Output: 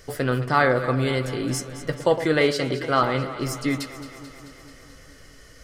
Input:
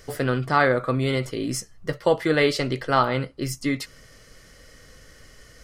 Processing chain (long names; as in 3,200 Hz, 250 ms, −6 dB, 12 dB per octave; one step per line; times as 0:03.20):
0:02.39–0:03.02: notch comb filter 890 Hz
delay that swaps between a low-pass and a high-pass 109 ms, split 1,300 Hz, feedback 82%, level −11.5 dB